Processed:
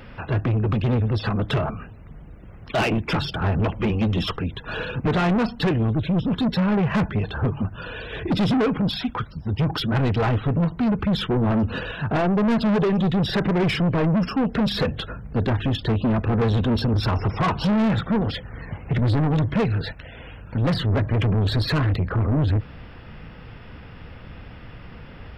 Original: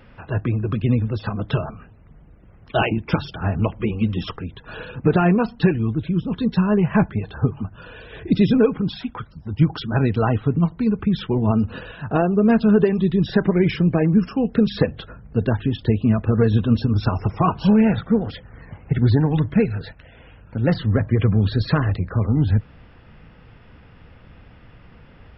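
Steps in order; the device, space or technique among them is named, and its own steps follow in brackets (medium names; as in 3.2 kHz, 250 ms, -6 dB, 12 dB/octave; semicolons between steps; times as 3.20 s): treble shelf 3.6 kHz +3.5 dB; saturation between pre-emphasis and de-emphasis (treble shelf 4.5 kHz +9 dB; saturation -23.5 dBFS, distortion -6 dB; treble shelf 4.5 kHz -9 dB); trim +6 dB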